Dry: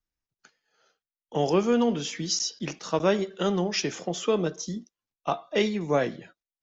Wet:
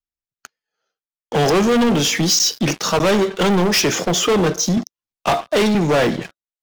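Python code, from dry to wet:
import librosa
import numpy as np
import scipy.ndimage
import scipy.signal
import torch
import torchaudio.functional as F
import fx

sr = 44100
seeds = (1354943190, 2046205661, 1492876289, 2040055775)

y = fx.leveller(x, sr, passes=5)
y = fx.band_squash(y, sr, depth_pct=40, at=(4.77, 5.75))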